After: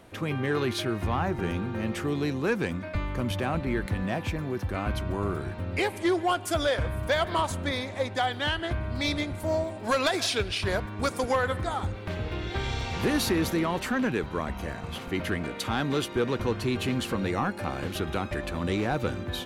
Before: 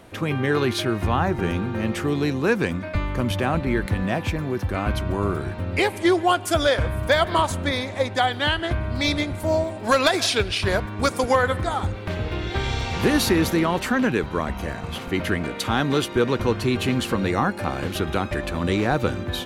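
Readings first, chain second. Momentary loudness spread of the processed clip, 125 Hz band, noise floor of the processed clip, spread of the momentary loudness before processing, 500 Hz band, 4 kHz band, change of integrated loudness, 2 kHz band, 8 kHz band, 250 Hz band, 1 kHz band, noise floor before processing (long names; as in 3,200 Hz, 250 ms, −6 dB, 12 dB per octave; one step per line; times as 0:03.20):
6 LU, −5.5 dB, −39 dBFS, 7 LU, −6.0 dB, −6.0 dB, −6.0 dB, −6.0 dB, −5.5 dB, −6.0 dB, −6.0 dB, −34 dBFS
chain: soft clipping −11 dBFS, distortion −21 dB
level −5 dB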